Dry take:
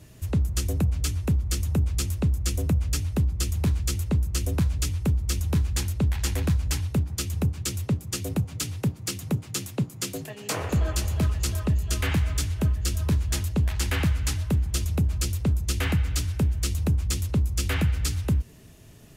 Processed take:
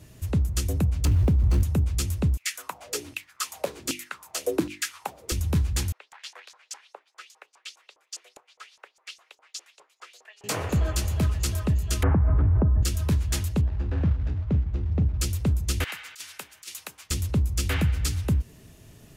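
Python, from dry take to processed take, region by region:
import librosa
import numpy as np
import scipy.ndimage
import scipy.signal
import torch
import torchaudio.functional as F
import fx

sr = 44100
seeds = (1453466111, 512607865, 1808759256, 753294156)

y = fx.chain(x, sr, fx.median_filter(points=25),
    fx.env_flatten(amount_pct=100), at=(1.05, 1.63))
y = fx.chain(y, sr, fx.filter_lfo_highpass(shape='saw_down', hz=1.3, low_hz=250.0, high_hz=2800.0, q=6.0),
    fx.hum_notches(base_hz=50, count=7), at=(2.37, 5.32))
y = fx.chain(y, sr, fx.cheby2_highpass(hz=220.0, order=4, stop_db=40),
    fx.high_shelf(hz=5300.0, db=-4.0),
    fx.filter_lfo_bandpass(shape='saw_up', hz=4.9, low_hz=810.0, high_hz=7300.0, q=2.4), at=(5.92, 10.44))
y = fx.chain(y, sr, fx.lowpass(hz=1200.0, slope=24),
    fx.env_flatten(amount_pct=100), at=(12.03, 12.83))
y = fx.chain(y, sr, fx.median_filter(points=41),
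    fx.air_absorb(metres=150.0),
    fx.doubler(ms=40.0, db=-13), at=(13.61, 15.2))
y = fx.chain(y, sr, fx.highpass(hz=1200.0, slope=12),
    fx.over_compress(threshold_db=-36.0, ratio=-0.5), at=(15.84, 17.11))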